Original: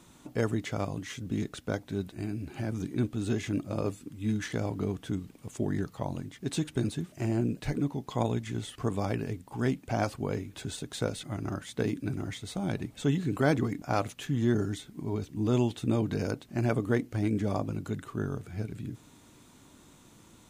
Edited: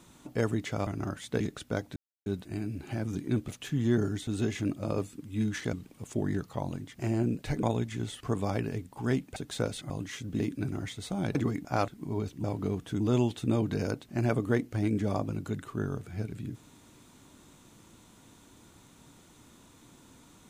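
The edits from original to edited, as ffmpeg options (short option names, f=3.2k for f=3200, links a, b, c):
-filter_complex "[0:a]asplit=16[a][b][c][d][e][f][g][h][i][j][k][l][m][n][o][p];[a]atrim=end=0.872[q];[b]atrim=start=11.318:end=11.852[r];[c]atrim=start=1.368:end=1.93,asetpts=PTS-STARTPTS,afade=t=out:st=0.558:d=0.004:c=hsin,apad=pad_dur=0.3[s];[d]atrim=start=1.93:end=3.152,asetpts=PTS-STARTPTS,afade=t=in:d=0.004:c=hsin[t];[e]atrim=start=14.048:end=14.842[u];[f]atrim=start=3.148:end=4.612[v];[g]atrim=start=5.168:end=6.432[w];[h]atrim=start=7.168:end=7.812[x];[i]atrim=start=8.178:end=9.912[y];[j]atrim=start=10.778:end=11.322[z];[k]atrim=start=0.868:end=1.372[aa];[l]atrim=start=11.848:end=12.802[ab];[m]atrim=start=13.518:end=14.052[ac];[n]atrim=start=14.838:end=15.402[ad];[o]atrim=start=4.608:end=5.172[ae];[p]atrim=start=15.398[af];[q][r]acrossfade=d=0.004:c1=hsin:c2=hsin[ag];[s][t]concat=n=2:v=0:a=1[ah];[ag][ah]acrossfade=d=0.004:c1=hsin:c2=hsin[ai];[ai][u]acrossfade=d=0.004:c1=hsin:c2=hsin[aj];[aj][v]acrossfade=d=0.004:c1=hsin:c2=hsin[ak];[ak][w]acrossfade=d=0.004:c1=hsin:c2=hsin[al];[al][x]acrossfade=d=0.004:c1=hsin:c2=hsin[am];[am][y]acrossfade=d=0.004:c1=hsin:c2=hsin[an];[an][z]acrossfade=d=0.004:c1=hsin:c2=hsin[ao];[ao][aa]acrossfade=d=0.004:c1=hsin:c2=hsin[ap];[ap][ab]acrossfade=d=0.004:c1=hsin:c2=hsin[aq];[aq][ac]acrossfade=d=0.004:c1=hsin:c2=hsin[ar];[ar][ad]acrossfade=d=0.004:c1=hsin:c2=hsin[as];[as][ae]acrossfade=d=0.004:c1=hsin:c2=hsin[at];[at][af]acrossfade=d=0.004:c1=hsin:c2=hsin"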